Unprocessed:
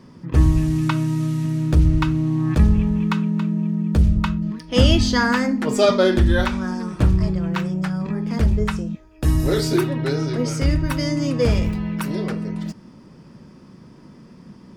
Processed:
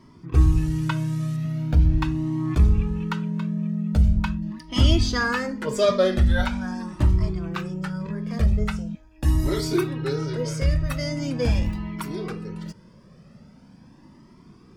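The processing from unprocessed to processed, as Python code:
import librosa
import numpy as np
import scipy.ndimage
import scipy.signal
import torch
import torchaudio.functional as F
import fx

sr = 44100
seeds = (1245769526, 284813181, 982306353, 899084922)

y = fx.peak_eq(x, sr, hz=8400.0, db=-11.5, octaves=0.83, at=(1.36, 2.02))
y = fx.comb_cascade(y, sr, direction='rising', hz=0.42)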